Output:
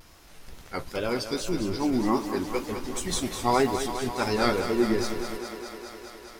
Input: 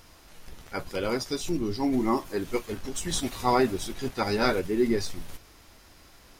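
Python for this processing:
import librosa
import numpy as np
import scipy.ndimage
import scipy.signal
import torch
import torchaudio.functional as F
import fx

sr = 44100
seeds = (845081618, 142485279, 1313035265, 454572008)

y = fx.wow_flutter(x, sr, seeds[0], rate_hz=2.1, depth_cents=100.0)
y = fx.echo_thinned(y, sr, ms=206, feedback_pct=81, hz=180.0, wet_db=-9.0)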